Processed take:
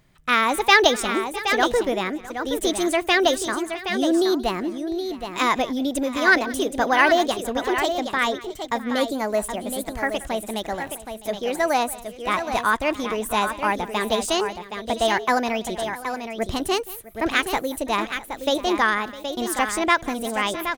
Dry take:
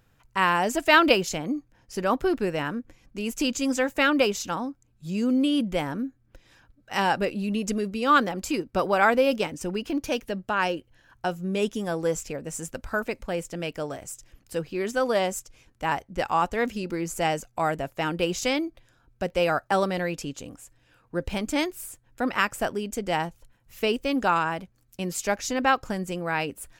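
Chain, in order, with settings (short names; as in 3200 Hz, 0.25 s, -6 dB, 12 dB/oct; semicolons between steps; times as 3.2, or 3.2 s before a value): varispeed +29%; tapped delay 0.178/0.656/0.771 s -19.5/-18.5/-8 dB; gain +3 dB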